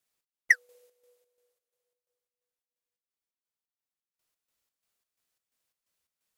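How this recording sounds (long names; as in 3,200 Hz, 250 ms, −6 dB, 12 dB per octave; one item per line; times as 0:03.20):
chopped level 2.9 Hz, depth 60%, duty 60%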